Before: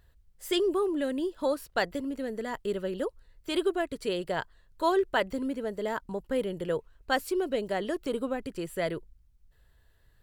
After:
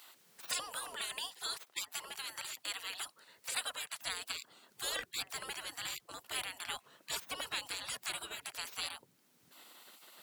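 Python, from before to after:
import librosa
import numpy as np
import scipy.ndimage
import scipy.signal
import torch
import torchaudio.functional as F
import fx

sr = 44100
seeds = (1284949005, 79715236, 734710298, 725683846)

y = fx.spec_gate(x, sr, threshold_db=-30, keep='weak')
y = fx.highpass(y, sr, hz=fx.steps((0.0, 640.0), (4.02, 160.0)), slope=6)
y = fx.band_squash(y, sr, depth_pct=40)
y = y * librosa.db_to_amplitude(11.5)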